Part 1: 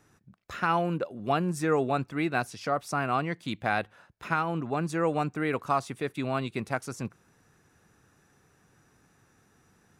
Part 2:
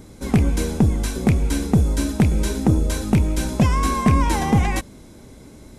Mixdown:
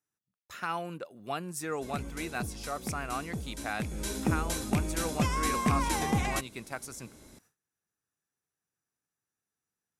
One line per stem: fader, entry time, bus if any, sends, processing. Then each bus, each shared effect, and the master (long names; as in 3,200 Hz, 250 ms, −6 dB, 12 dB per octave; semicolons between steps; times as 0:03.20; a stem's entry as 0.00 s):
−8.0 dB, 0.00 s, no send, high-shelf EQ 7,500 Hz +10.5 dB
0:03.77 −17 dB → 0:04.14 −8 dB, 1.60 s, no send, no processing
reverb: not used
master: noise gate with hold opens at −46 dBFS; spectral tilt +1.5 dB per octave